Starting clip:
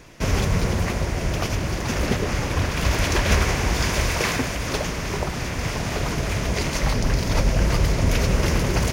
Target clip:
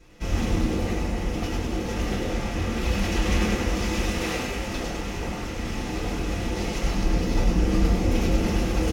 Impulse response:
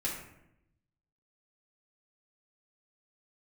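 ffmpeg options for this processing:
-filter_complex "[0:a]asplit=8[s0][s1][s2][s3][s4][s5][s6][s7];[s1]adelay=100,afreqshift=140,volume=0.708[s8];[s2]adelay=200,afreqshift=280,volume=0.363[s9];[s3]adelay=300,afreqshift=420,volume=0.184[s10];[s4]adelay=400,afreqshift=560,volume=0.0944[s11];[s5]adelay=500,afreqshift=700,volume=0.0479[s12];[s6]adelay=600,afreqshift=840,volume=0.0245[s13];[s7]adelay=700,afreqshift=980,volume=0.0124[s14];[s0][s8][s9][s10][s11][s12][s13][s14]amix=inputs=8:normalize=0[s15];[1:a]atrim=start_sample=2205,atrim=end_sample=6174,asetrate=66150,aresample=44100[s16];[s15][s16]afir=irnorm=-1:irlink=0,volume=0.376"

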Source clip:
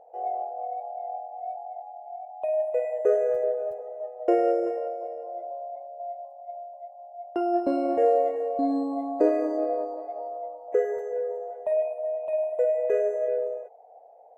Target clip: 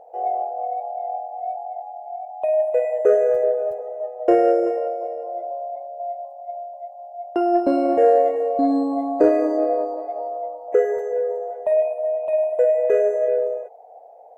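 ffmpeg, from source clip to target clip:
-af "acontrast=68"

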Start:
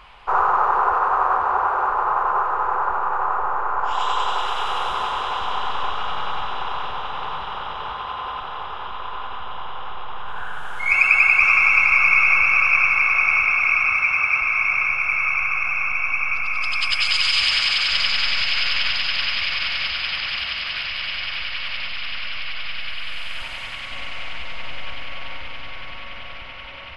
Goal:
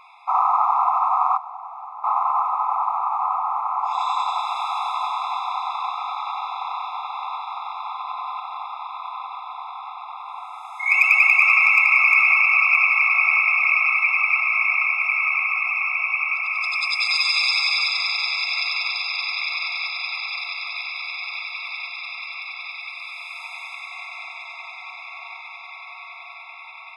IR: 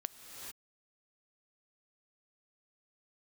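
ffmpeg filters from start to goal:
-filter_complex "[0:a]asettb=1/sr,asplit=3[s0][s1][s2];[s0]atrim=end=1.374[s3];[s1]atrim=start=1.37:end=2.04,asetpts=PTS-STARTPTS,afade=t=in:d=0.004:c=qsin,afade=t=out:st=0.666:d=0.004:c=qsin,acrossover=split=380[s4][s5];[s5]acompressor=threshold=0.0141:ratio=4[s6];[s4][s6]amix=inputs=2:normalize=0[s7];[s2]atrim=start=2.036[s8];[s3][s7]acrossfade=d=0.004:c1=hsin:c2=qsin[s9];[s9][s8]acrossfade=d=0.004:c1=qsin:c2=hsin,asettb=1/sr,asplit=3[s10][s11][s12];[s10]atrim=end=17.084[s13];[s11]atrim=start=17.08:end=17.89,asetpts=PTS-STARTPTS,afade=t=in:d=0.004:c=qsin,afade=t=out:st=0.806:d=0.004:c=qsin,aecho=1:1:7.5:0.55,atrim=end_sample=35721[s14];[s12]atrim=start=17.886[s15];[s13][s14]acrossfade=d=0.004:c1=hsin:c2=qsin[s16];[s16][s15]acrossfade=d=0.004:c1=qsin:c2=hsin,volume=1.88,asoftclip=hard,volume=0.531,afftfilt=real='re*eq(mod(floor(b*sr/1024/680),2),1)':imag='im*eq(mod(floor(b*sr/1024/680),2),1)':win_size=1024:overlap=0.75"

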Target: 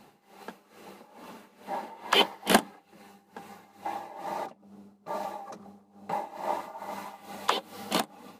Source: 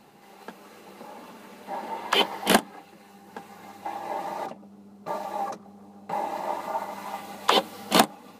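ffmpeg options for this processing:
-af "tremolo=f=2.3:d=0.82"

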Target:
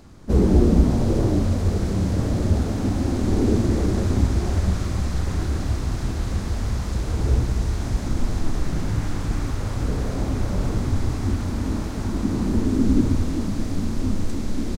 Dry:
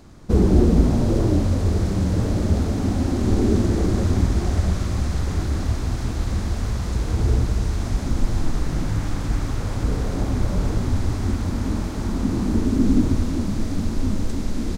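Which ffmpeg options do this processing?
-filter_complex "[0:a]asplit=3[s0][s1][s2];[s1]asetrate=52444,aresample=44100,atempo=0.840896,volume=0.282[s3];[s2]asetrate=55563,aresample=44100,atempo=0.793701,volume=0.141[s4];[s0][s3][s4]amix=inputs=3:normalize=0,asplit=2[s5][s6];[s6]adelay=31,volume=0.251[s7];[s5][s7]amix=inputs=2:normalize=0,volume=0.841"

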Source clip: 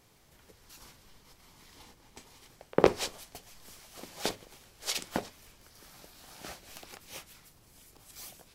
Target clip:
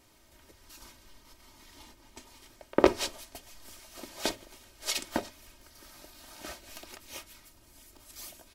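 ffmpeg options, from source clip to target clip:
-af "aecho=1:1:3.2:0.66"

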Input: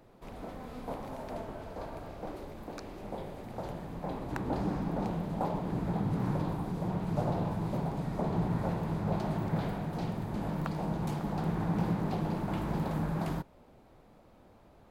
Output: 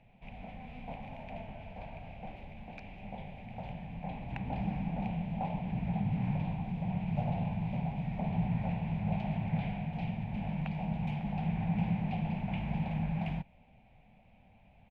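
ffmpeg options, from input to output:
-af "firequalizer=gain_entry='entry(210,0);entry(330,-19);entry(760,0);entry(1200,-19);entry(2400,9);entry(4300,-15);entry(7900,-26)':delay=0.05:min_phase=1"

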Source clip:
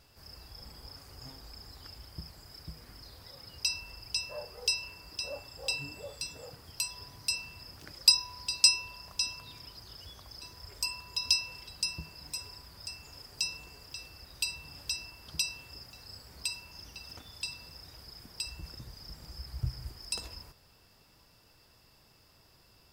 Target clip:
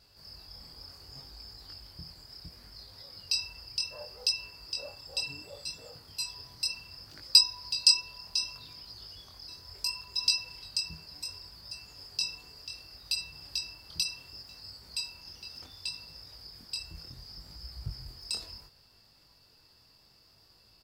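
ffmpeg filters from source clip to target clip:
-af "equalizer=f=4500:w=4.6:g=12,atempo=1.1,flanger=delay=19:depth=5.6:speed=0.68"

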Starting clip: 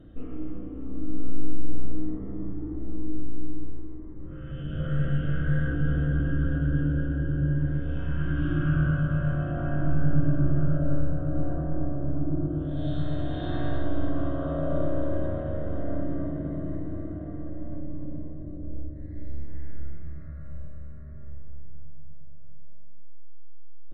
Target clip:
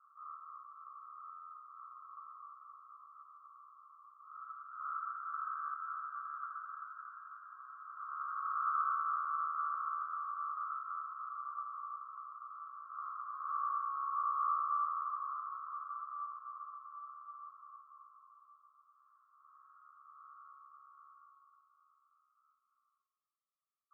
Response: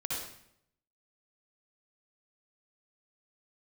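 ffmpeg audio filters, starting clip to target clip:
-af "asuperpass=centerf=1200:order=8:qfactor=4.9,volume=5.31"

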